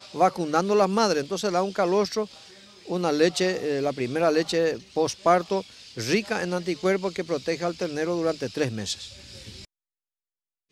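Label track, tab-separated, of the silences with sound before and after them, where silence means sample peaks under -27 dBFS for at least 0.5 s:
2.240000	2.900000	silence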